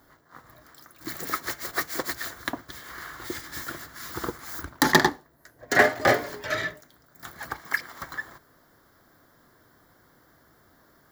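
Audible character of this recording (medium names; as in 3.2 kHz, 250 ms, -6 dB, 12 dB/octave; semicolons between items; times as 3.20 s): noise floor -61 dBFS; spectral tilt -3.5 dB/octave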